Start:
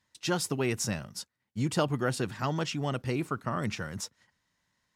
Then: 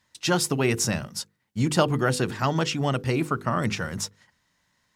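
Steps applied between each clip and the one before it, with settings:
mains-hum notches 50/100/150/200/250/300/350/400/450/500 Hz
level +7 dB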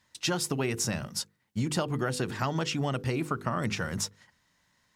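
downward compressor, threshold −26 dBFS, peak gain reduction 10.5 dB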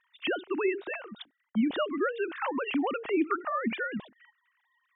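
three sine waves on the formant tracks

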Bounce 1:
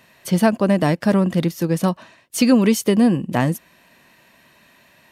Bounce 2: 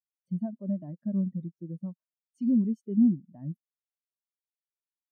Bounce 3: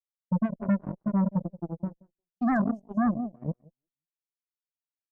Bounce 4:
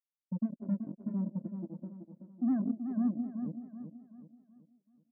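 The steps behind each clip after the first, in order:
notch filter 470 Hz, Q 14; brickwall limiter −11 dBFS, peak gain reduction 6.5 dB; every bin expanded away from the loudest bin 2.5 to 1; level −3.5 dB
repeating echo 177 ms, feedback 28%, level −9.5 dB; speech leveller within 4 dB 0.5 s; harmonic generator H 3 −28 dB, 5 −7 dB, 7 −7 dB, 8 −34 dB, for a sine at −16.5 dBFS; level −2 dB
resonant band-pass 270 Hz, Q 2.8; repeating echo 379 ms, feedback 41%, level −8 dB; level −2 dB

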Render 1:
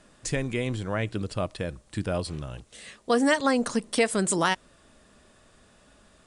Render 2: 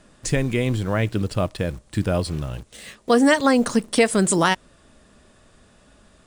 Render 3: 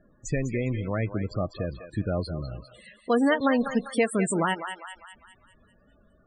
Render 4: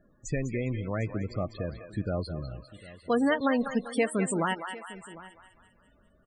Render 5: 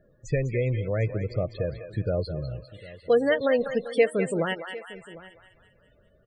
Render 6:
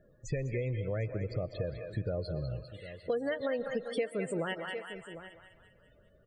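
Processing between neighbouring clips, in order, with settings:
low-shelf EQ 320 Hz +4 dB; in parallel at −9 dB: bit reduction 7 bits; on the sum: level +2 dB
feedback echo with a high-pass in the loop 200 ms, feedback 55%, high-pass 710 Hz, level −7 dB; spectral peaks only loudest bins 32; level −6 dB
single-tap delay 752 ms −18.5 dB; level −3 dB
octave-band graphic EQ 125/250/500/1,000/2,000/4,000/8,000 Hz +8/−8/+12/−11/+5/+4/−9 dB
convolution reverb RT60 0.85 s, pre-delay 90 ms, DRR 17.5 dB; downward compressor 4 to 1, threshold −29 dBFS, peak gain reduction 12.5 dB; level −2 dB

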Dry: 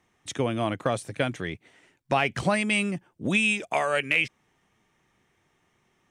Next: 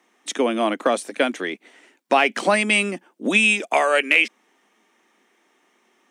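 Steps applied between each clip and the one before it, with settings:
Butterworth high-pass 220 Hz 48 dB per octave
level +7 dB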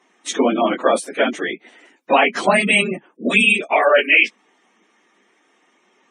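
random phases in long frames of 50 ms
gate on every frequency bin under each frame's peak −25 dB strong
level +3.5 dB

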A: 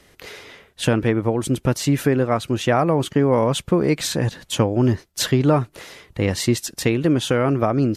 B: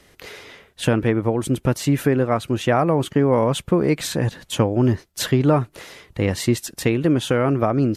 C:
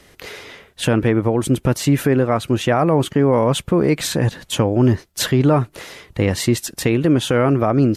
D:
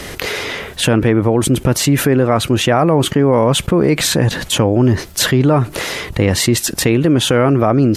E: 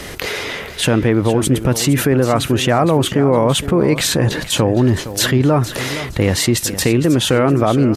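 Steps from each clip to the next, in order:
dynamic equaliser 5,300 Hz, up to −4 dB, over −42 dBFS, Q 0.96
brickwall limiter −10.5 dBFS, peak gain reduction 4 dB; level +4 dB
envelope flattener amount 50%; level +1.5 dB
repeating echo 463 ms, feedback 23%, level −13 dB; level −1.5 dB

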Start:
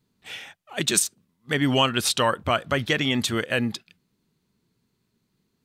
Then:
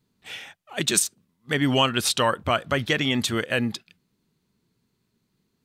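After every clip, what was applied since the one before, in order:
no processing that can be heard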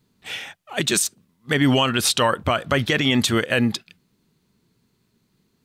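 brickwall limiter −14.5 dBFS, peak gain reduction 8.5 dB
level +6 dB

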